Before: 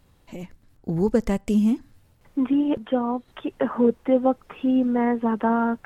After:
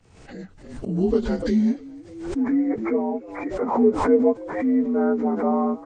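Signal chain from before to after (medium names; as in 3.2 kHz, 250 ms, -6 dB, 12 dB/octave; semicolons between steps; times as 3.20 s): frequency axis rescaled in octaves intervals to 85%; peaking EQ 440 Hz +4 dB 0.27 oct; on a send: frequency-shifting echo 296 ms, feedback 30%, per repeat +58 Hz, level -20.5 dB; on the sum: expander -48 dBFS; swell ahead of each attack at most 69 dB/s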